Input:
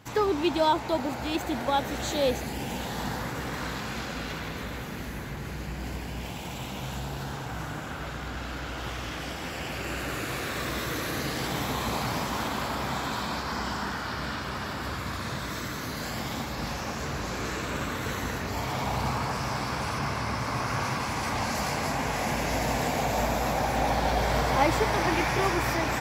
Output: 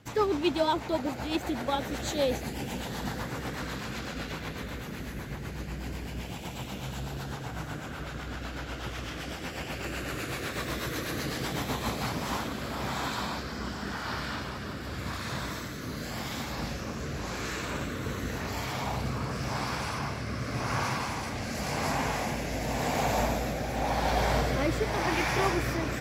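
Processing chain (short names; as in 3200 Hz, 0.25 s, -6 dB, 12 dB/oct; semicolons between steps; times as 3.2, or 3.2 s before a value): rotary speaker horn 8 Hz, later 0.9 Hz, at 11.61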